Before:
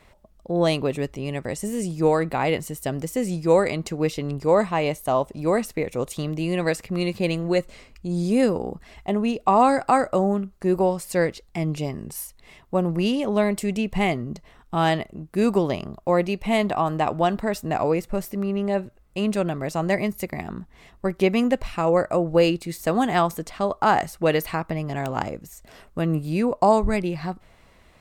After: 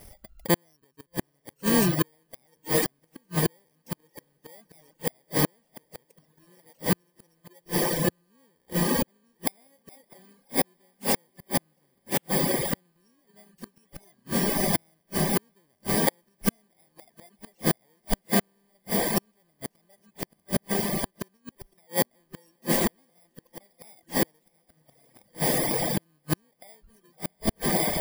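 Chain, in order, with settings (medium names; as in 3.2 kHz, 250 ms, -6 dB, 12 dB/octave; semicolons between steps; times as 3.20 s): bit-reversed sample order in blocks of 32 samples; on a send: echo that smears into a reverb 644 ms, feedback 78%, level -9 dB; 21.37–22.06 s: on the sum: compressor with a negative ratio -24 dBFS, ratio -1; inverted gate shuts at -15 dBFS, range -38 dB; reverb removal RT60 1.2 s; trim +6 dB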